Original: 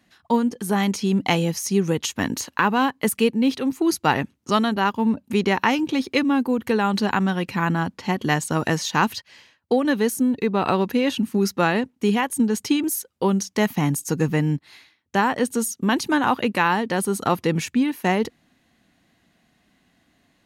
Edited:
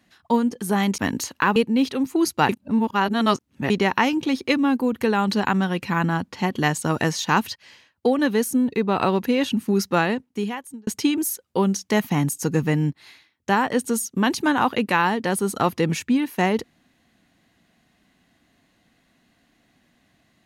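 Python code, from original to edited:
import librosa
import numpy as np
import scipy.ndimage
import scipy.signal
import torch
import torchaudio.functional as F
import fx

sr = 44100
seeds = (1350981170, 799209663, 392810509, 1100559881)

y = fx.edit(x, sr, fx.cut(start_s=0.98, length_s=1.17),
    fx.cut(start_s=2.73, length_s=0.49),
    fx.reverse_span(start_s=4.15, length_s=1.21),
    fx.fade_out_span(start_s=11.64, length_s=0.89), tone=tone)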